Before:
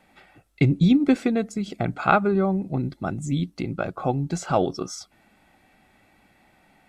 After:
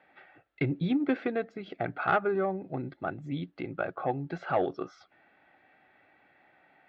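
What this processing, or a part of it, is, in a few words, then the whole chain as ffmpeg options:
overdrive pedal into a guitar cabinet: -filter_complex "[0:a]asplit=2[s0][s1];[s1]highpass=f=720:p=1,volume=6.31,asoftclip=type=tanh:threshold=0.668[s2];[s0][s2]amix=inputs=2:normalize=0,lowpass=f=1100:p=1,volume=0.501,highpass=83,equalizer=f=210:t=q:w=4:g=-9,equalizer=f=1000:t=q:w=4:g=-5,equalizer=f=1700:t=q:w=4:g=6,lowpass=f=3900:w=0.5412,lowpass=f=3900:w=1.3066,volume=0.376"

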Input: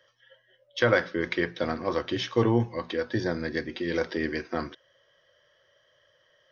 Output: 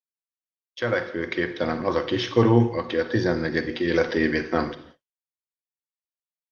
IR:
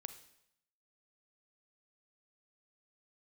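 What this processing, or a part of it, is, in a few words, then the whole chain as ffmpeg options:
speakerphone in a meeting room: -filter_complex "[1:a]atrim=start_sample=2205[s0];[0:a][s0]afir=irnorm=-1:irlink=0,asplit=2[s1][s2];[s2]adelay=80,highpass=300,lowpass=3400,asoftclip=type=hard:threshold=0.0794,volume=0.0501[s3];[s1][s3]amix=inputs=2:normalize=0,dynaudnorm=f=200:g=13:m=5.01,agate=range=0.00282:threshold=0.00501:ratio=16:detection=peak,volume=0.841" -ar 48000 -c:a libopus -b:a 32k

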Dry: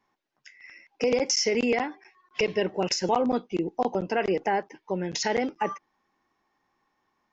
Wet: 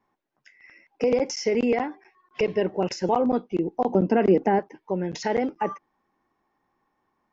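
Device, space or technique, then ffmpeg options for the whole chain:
through cloth: -filter_complex "[0:a]highshelf=f=2000:g=-12,asettb=1/sr,asplit=3[s0][s1][s2];[s0]atrim=end=3.894[s3];[s1]atrim=start=3.89:end=4.59,asetpts=PTS-STARTPTS,afade=t=in:d=0.004:c=qsin,afade=t=out:st=0.696:d=0.004:c=qsin,equalizer=f=240:w=1.1:g=10.5[s4];[s2]atrim=start=4.586[s5];[s3][s4]acrossfade=d=0.004:c1=hsin:c2=qsin[s6];[s6][s5]acrossfade=d=0.004:c1=qsin:c2=hsin,volume=1.41"

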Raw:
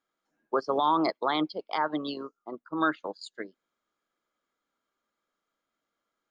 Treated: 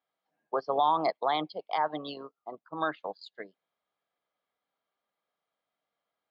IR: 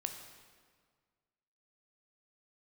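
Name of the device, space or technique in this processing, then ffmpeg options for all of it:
guitar cabinet: -af "highpass=84,equalizer=f=240:t=q:w=4:g=-8,equalizer=f=340:t=q:w=4:g=-9,equalizer=f=730:t=q:w=4:g=7,equalizer=f=1400:t=q:w=4:g=-7,lowpass=f=4400:w=0.5412,lowpass=f=4400:w=1.3066,volume=0.841"

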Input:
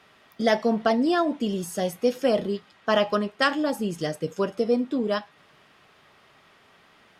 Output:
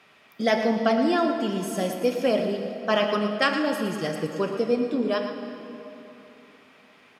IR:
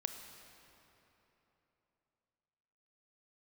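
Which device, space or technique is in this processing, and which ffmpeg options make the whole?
PA in a hall: -filter_complex "[0:a]highpass=110,equalizer=f=2400:t=o:w=0.28:g=7,aecho=1:1:116:0.299[s0];[1:a]atrim=start_sample=2205[s1];[s0][s1]afir=irnorm=-1:irlink=0"

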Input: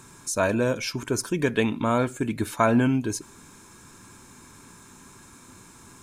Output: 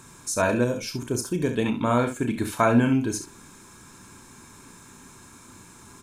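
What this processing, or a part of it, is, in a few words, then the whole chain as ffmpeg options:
slapback doubling: -filter_complex "[0:a]asplit=3[s0][s1][s2];[s1]adelay=33,volume=0.376[s3];[s2]adelay=68,volume=0.335[s4];[s0][s3][s4]amix=inputs=3:normalize=0,asettb=1/sr,asplit=3[s5][s6][s7];[s5]atrim=end=0.644[s8];[s6]atrim=start=0.64:end=1.66,asetpts=PTS-STARTPTS,afade=t=in:d=0.004:c=qsin,afade=t=out:st=1.016:d=0.004:c=qsin,equalizer=f=1700:w=0.48:g=-8.5[s9];[s7]atrim=start=1.656[s10];[s8][s9]acrossfade=d=0.004:c1=hsin:c2=qsin[s11];[s11][s10]acrossfade=d=0.004:c1=qsin:c2=hsin"

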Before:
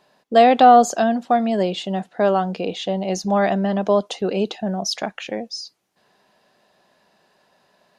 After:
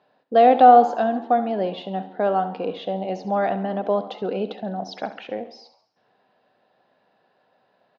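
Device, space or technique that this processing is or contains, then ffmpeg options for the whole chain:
frequency-shifting delay pedal into a guitar cabinet: -filter_complex "[0:a]aecho=1:1:68|136|204|272:0.211|0.093|0.0409|0.018,asplit=6[s0][s1][s2][s3][s4][s5];[s1]adelay=83,afreqshift=83,volume=0.0841[s6];[s2]adelay=166,afreqshift=166,volume=0.0519[s7];[s3]adelay=249,afreqshift=249,volume=0.0324[s8];[s4]adelay=332,afreqshift=332,volume=0.02[s9];[s5]adelay=415,afreqshift=415,volume=0.0124[s10];[s0][s6][s7][s8][s9][s10]amix=inputs=6:normalize=0,highpass=88,equalizer=f=110:t=q:w=4:g=9,equalizer=f=270:t=q:w=4:g=6,equalizer=f=490:t=q:w=4:g=8,equalizer=f=760:t=q:w=4:g=7,equalizer=f=1400:t=q:w=4:g=5,lowpass=f=4100:w=0.5412,lowpass=f=4100:w=1.3066,volume=0.398"

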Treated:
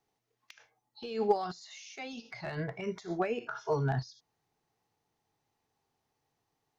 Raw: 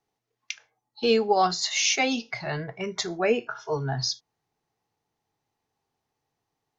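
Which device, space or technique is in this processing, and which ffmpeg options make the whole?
de-esser from a sidechain: -filter_complex "[0:a]asplit=2[s0][s1];[s1]highpass=5000,apad=whole_len=299269[s2];[s0][s2]sidechaincompress=threshold=0.002:ratio=5:attack=0.61:release=52"

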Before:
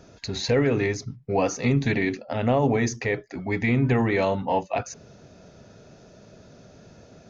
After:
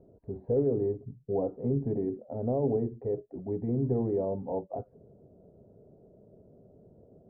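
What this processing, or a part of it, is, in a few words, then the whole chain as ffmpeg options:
under water: -af "lowpass=f=670:w=0.5412,lowpass=f=670:w=1.3066,equalizer=f=410:t=o:w=0.5:g=5.5,volume=0.398"

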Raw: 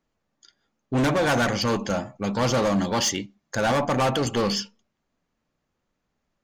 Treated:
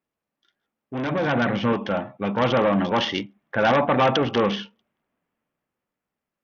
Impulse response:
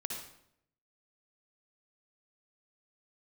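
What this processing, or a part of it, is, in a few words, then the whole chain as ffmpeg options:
Bluetooth headset: -filter_complex "[0:a]asettb=1/sr,asplit=3[s0][s1][s2];[s0]atrim=end=1.114[s3];[s1]atrim=start=1.11:end=1.73,asetpts=PTS-STARTPTS,afade=t=in:d=0.004:c=qsin,afade=t=out:st=0.616:d=0.004:c=qsin,equalizer=f=170:t=o:w=1.5:g=8[s4];[s2]atrim=start=1.726[s5];[s3][s4]acrossfade=d=0.004:c1=hsin:c2=qsin[s6];[s6][s5]acrossfade=d=0.004:c1=qsin:c2=hsin,highpass=f=180:p=1,dynaudnorm=f=230:g=13:m=4.47,aresample=8000,aresample=44100,volume=0.447" -ar 48000 -c:a sbc -b:a 64k

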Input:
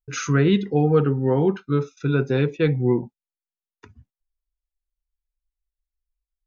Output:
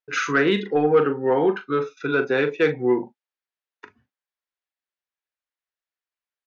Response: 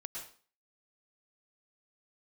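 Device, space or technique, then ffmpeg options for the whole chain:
intercom: -filter_complex "[0:a]highpass=400,lowpass=3900,equalizer=f=1700:t=o:w=0.59:g=4.5,asoftclip=type=tanh:threshold=0.224,asplit=2[s0][s1];[s1]adelay=40,volume=0.282[s2];[s0][s2]amix=inputs=2:normalize=0,volume=1.78"

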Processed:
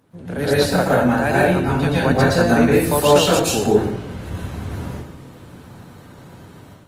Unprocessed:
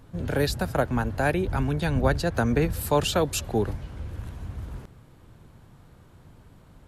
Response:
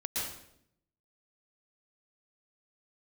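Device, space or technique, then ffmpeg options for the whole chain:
far-field microphone of a smart speaker: -filter_complex "[1:a]atrim=start_sample=2205[s0];[0:a][s0]afir=irnorm=-1:irlink=0,highpass=150,dynaudnorm=f=320:g=3:m=3.55,volume=0.891" -ar 48000 -c:a libopus -b:a 24k

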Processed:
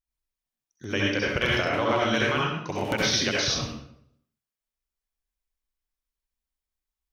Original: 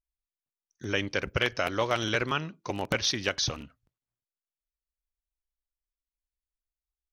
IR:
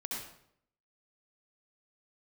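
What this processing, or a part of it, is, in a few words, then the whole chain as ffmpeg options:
bathroom: -filter_complex "[1:a]atrim=start_sample=2205[s0];[0:a][s0]afir=irnorm=-1:irlink=0,asplit=3[s1][s2][s3];[s1]afade=t=out:st=1.64:d=0.02[s4];[s2]aemphasis=mode=reproduction:type=50fm,afade=t=in:st=1.64:d=0.02,afade=t=out:st=2.13:d=0.02[s5];[s3]afade=t=in:st=2.13:d=0.02[s6];[s4][s5][s6]amix=inputs=3:normalize=0,volume=1.41"

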